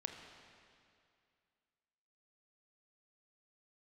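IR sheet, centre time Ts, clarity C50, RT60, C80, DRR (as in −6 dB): 58 ms, 5.0 dB, 2.4 s, 6.0 dB, 3.5 dB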